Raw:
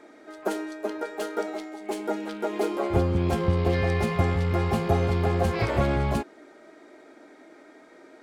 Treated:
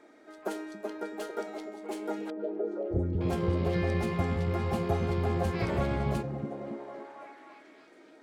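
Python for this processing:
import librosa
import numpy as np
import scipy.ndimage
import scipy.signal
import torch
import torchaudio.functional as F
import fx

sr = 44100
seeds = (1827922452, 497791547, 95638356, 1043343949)

y = fx.envelope_sharpen(x, sr, power=3.0, at=(2.3, 3.21))
y = fx.echo_stepped(y, sr, ms=276, hz=160.0, octaves=0.7, feedback_pct=70, wet_db=-1.0)
y = F.gain(torch.from_numpy(y), -6.5).numpy()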